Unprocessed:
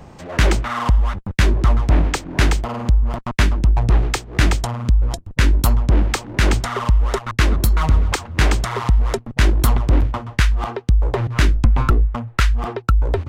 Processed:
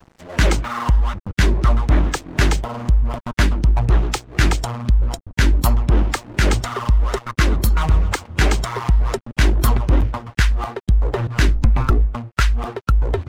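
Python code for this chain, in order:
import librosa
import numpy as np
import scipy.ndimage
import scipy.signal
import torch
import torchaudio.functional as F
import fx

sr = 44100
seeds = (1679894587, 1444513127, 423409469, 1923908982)

y = fx.spec_quant(x, sr, step_db=15)
y = np.sign(y) * np.maximum(np.abs(y) - 10.0 ** (-39.0 / 20.0), 0.0)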